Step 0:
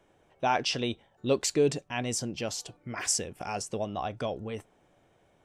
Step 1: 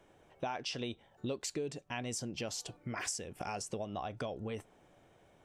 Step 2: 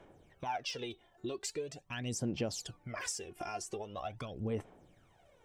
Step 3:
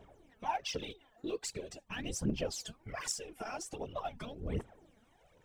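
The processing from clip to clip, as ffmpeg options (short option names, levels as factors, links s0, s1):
-af "acompressor=threshold=0.0141:ratio=6,volume=1.12"
-af "aphaser=in_gain=1:out_gain=1:delay=2.9:decay=0.68:speed=0.43:type=sinusoidal,volume=0.668"
-af "afftfilt=real='hypot(re,im)*cos(2*PI*random(0))':imag='hypot(re,im)*sin(2*PI*random(1))':win_size=512:overlap=0.75,aphaser=in_gain=1:out_gain=1:delay=4.8:decay=0.61:speed=1.3:type=triangular,volume=1.58"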